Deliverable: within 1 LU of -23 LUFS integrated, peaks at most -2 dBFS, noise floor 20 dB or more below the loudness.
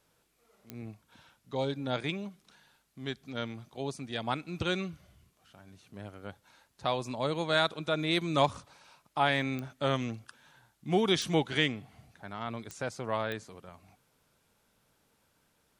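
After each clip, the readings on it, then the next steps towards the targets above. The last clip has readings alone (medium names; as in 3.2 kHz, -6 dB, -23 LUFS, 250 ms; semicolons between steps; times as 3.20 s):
clicks found 5; loudness -32.0 LUFS; peak level -11.5 dBFS; loudness target -23.0 LUFS
-> de-click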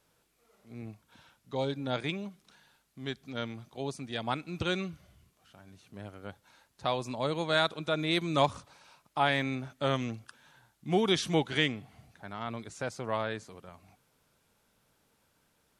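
clicks found 0; loudness -32.0 LUFS; peak level -11.5 dBFS; loudness target -23.0 LUFS
-> trim +9 dB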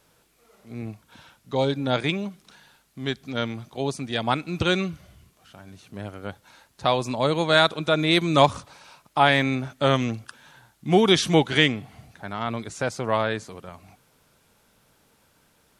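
loudness -23.0 LUFS; peak level -2.5 dBFS; noise floor -63 dBFS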